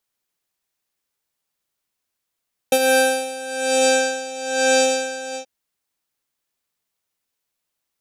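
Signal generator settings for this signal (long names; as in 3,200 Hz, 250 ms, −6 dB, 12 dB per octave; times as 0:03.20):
subtractive patch with tremolo C5, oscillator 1 square, oscillator 2 saw, interval +7 semitones, detune 4 cents, oscillator 2 level 0 dB, sub −11 dB, noise −22 dB, filter lowpass, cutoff 6,000 Hz, Q 3, filter envelope 1 octave, filter decay 1.33 s, filter sustain 30%, attack 3.6 ms, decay 0.06 s, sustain −10.5 dB, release 0.10 s, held 2.63 s, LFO 1.1 Hz, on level 16 dB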